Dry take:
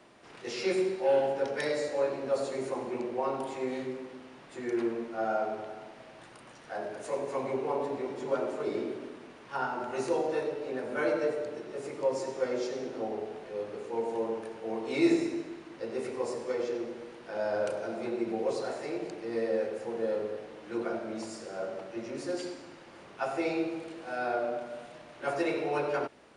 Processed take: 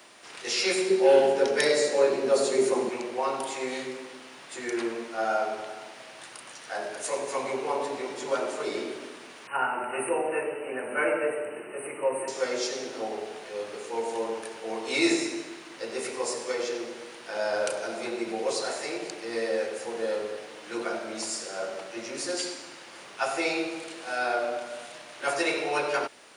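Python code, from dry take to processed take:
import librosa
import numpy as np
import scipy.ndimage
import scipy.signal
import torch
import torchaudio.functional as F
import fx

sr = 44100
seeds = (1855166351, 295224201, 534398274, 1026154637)

y = fx.small_body(x, sr, hz=(210.0, 380.0), ring_ms=40, db=13, at=(0.9, 2.89))
y = fx.brickwall_bandstop(y, sr, low_hz=3000.0, high_hz=7900.0, at=(9.47, 12.28))
y = fx.tilt_eq(y, sr, slope=3.5)
y = y * 10.0 ** (5.0 / 20.0)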